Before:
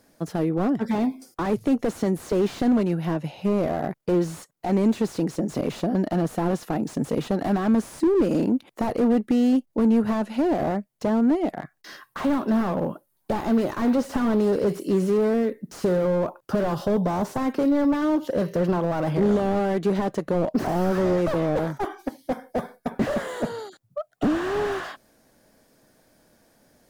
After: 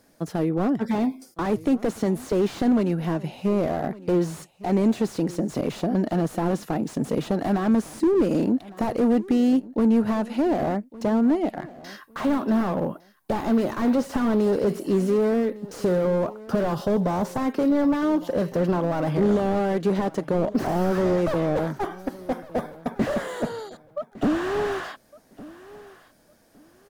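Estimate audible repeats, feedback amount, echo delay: 2, 24%, 1,158 ms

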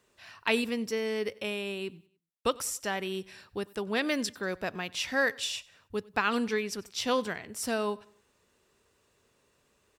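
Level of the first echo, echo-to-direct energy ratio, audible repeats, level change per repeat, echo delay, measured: −23.5 dB, −22.5 dB, 2, −7.5 dB, 95 ms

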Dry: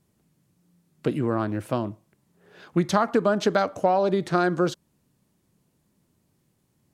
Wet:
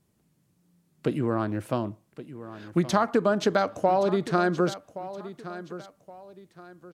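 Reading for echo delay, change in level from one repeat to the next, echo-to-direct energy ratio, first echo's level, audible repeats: 1,121 ms, −9.5 dB, −14.0 dB, −14.5 dB, 2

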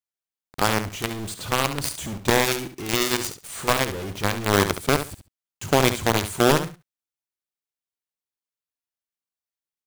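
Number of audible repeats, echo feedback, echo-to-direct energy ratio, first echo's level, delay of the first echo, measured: 2, 17%, −10.0 dB, −10.0 dB, 69 ms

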